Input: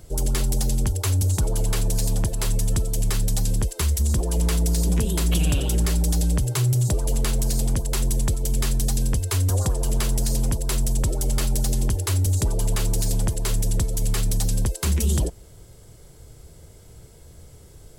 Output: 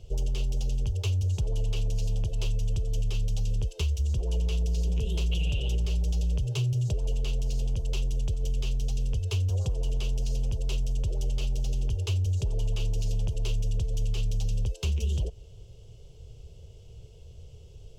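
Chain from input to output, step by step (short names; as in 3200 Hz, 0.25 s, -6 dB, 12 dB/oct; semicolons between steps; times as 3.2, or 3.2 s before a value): EQ curve 110 Hz 0 dB, 290 Hz -15 dB, 430 Hz -2 dB, 1900 Hz -22 dB, 2800 Hz +4 dB, 4000 Hz -8 dB, 6200 Hz -7 dB, 9000 Hz -22 dB; compressor, threshold -24 dBFS, peak gain reduction 6.5 dB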